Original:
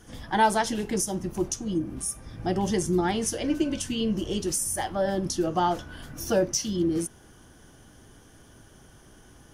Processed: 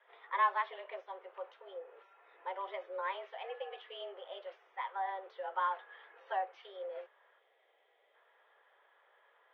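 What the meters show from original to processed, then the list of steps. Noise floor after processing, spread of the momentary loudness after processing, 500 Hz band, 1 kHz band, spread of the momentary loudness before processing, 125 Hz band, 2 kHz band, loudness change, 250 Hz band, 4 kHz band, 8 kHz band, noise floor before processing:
−72 dBFS, 16 LU, −15.0 dB, −7.0 dB, 7 LU, below −40 dB, −7.5 dB, −12.5 dB, below −35 dB, −16.5 dB, below −40 dB, −53 dBFS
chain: three-way crossover with the lows and the highs turned down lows −13 dB, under 550 Hz, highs −23 dB, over 2,800 Hz
single-sideband voice off tune +190 Hz 240–3,500 Hz
gain on a spectral selection 0:07.39–0:08.14, 830–1,900 Hz −9 dB
level −7 dB

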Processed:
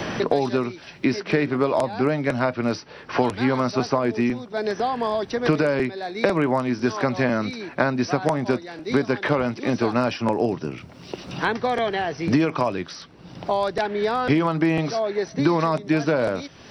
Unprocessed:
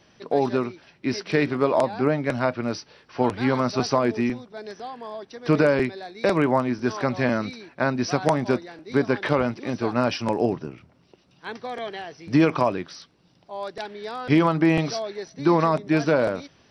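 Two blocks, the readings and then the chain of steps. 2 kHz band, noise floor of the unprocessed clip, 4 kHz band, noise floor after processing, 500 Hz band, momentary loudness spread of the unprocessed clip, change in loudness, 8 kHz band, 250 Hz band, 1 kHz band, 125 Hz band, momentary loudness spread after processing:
+2.0 dB, −60 dBFS, +2.0 dB, −44 dBFS, +1.0 dB, 15 LU, +0.5 dB, can't be measured, +1.0 dB, +1.5 dB, +0.5 dB, 7 LU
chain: multiband upward and downward compressor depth 100%

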